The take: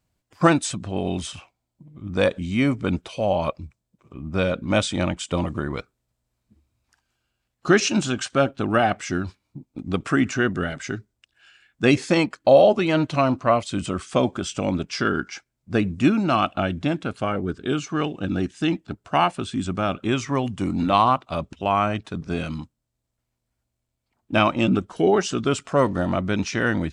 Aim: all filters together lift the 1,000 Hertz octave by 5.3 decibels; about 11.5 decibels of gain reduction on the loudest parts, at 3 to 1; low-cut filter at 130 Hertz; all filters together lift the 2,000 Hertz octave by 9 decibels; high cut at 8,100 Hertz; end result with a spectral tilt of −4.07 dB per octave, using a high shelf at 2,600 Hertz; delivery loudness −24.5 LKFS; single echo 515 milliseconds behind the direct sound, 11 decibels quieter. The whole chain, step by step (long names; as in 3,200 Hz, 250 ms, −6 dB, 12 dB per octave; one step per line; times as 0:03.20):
high-pass filter 130 Hz
low-pass filter 8,100 Hz
parametric band 1,000 Hz +3.5 dB
parametric band 2,000 Hz +8.5 dB
high-shelf EQ 2,600 Hz +5.5 dB
downward compressor 3 to 1, threshold −23 dBFS
single-tap delay 515 ms −11 dB
level +2 dB